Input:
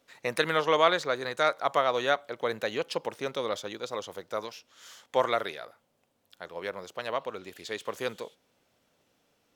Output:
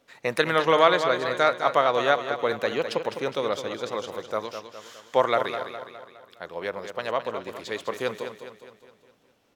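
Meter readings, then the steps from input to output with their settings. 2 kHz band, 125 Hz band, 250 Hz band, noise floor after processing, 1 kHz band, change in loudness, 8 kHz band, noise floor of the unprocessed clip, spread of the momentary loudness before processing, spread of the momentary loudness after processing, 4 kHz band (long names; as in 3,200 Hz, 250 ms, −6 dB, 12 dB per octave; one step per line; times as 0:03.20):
+4.0 dB, +5.5 dB, +5.5 dB, −63 dBFS, +5.0 dB, +4.5 dB, +1.0 dB, −73 dBFS, 18 LU, 18 LU, +2.5 dB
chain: high-shelf EQ 3,900 Hz −5.5 dB
on a send: repeating echo 206 ms, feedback 50%, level −9 dB
on the sum: level +4.5 dB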